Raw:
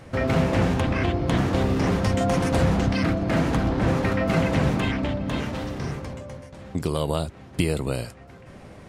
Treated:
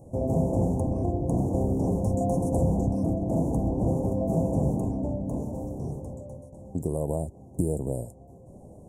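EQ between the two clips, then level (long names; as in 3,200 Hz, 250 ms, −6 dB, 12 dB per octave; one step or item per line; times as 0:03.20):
inverse Chebyshev band-stop filter 1,300–4,600 Hz, stop band 40 dB
−3.0 dB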